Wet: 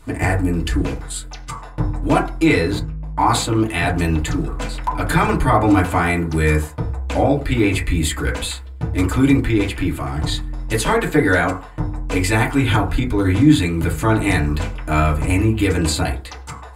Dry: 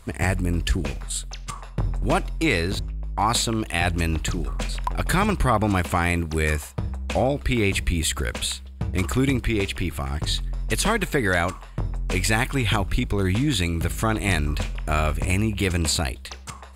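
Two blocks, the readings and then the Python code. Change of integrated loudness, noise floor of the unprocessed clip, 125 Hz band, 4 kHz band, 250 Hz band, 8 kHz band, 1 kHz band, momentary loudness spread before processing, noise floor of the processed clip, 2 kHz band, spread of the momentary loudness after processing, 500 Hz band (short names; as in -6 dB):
+5.5 dB, -40 dBFS, +5.5 dB, +0.5 dB, +8.0 dB, +0.5 dB, +6.0 dB, 8 LU, -35 dBFS, +4.0 dB, 11 LU, +5.5 dB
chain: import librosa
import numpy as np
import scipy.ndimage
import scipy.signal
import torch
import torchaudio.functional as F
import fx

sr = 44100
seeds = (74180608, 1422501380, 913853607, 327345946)

y = fx.rev_fdn(x, sr, rt60_s=0.35, lf_ratio=0.95, hf_ratio=0.3, size_ms=20.0, drr_db=-4.5)
y = y * 10.0 ** (-1.0 / 20.0)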